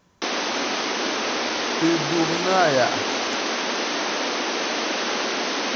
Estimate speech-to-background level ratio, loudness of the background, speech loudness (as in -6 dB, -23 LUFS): 0.5 dB, -23.5 LUFS, -23.0 LUFS